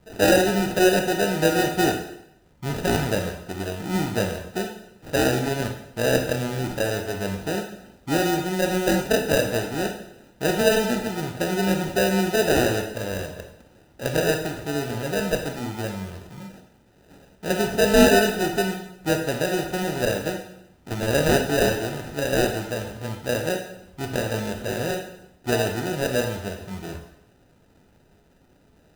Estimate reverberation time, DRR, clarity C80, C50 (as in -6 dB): 0.75 s, 4.0 dB, 9.5 dB, 7.0 dB